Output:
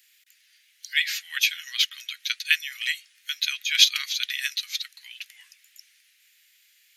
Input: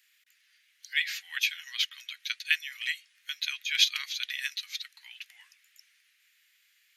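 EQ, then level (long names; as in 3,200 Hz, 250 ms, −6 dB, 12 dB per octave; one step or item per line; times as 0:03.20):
high-pass filter 1,000 Hz 12 dB per octave
high-shelf EQ 2,200 Hz +11.5 dB
dynamic equaliser 1,300 Hz, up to +5 dB, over −49 dBFS, Q 2.1
−2.0 dB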